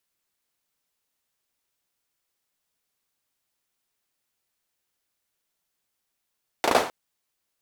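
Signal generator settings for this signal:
synth clap length 0.26 s, apart 36 ms, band 580 Hz, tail 0.41 s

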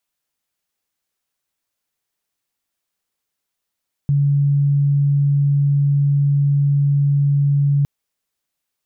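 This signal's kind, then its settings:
tone sine 142 Hz −12.5 dBFS 3.76 s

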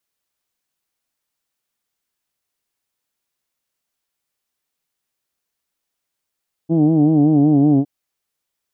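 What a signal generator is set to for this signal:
vowel from formants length 1.16 s, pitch 159 Hz, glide −2 semitones, F1 290 Hz, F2 730 Hz, F3 3,100 Hz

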